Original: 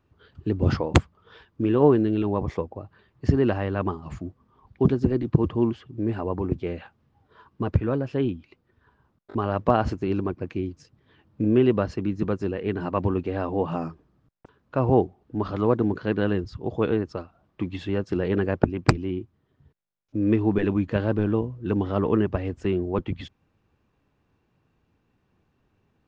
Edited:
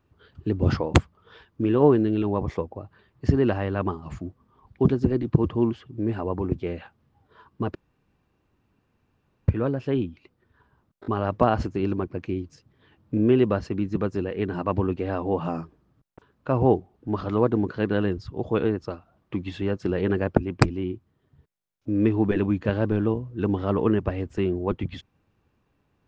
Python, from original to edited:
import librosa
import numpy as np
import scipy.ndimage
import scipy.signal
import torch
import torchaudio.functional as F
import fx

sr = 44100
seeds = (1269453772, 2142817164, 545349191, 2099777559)

y = fx.edit(x, sr, fx.insert_room_tone(at_s=7.75, length_s=1.73), tone=tone)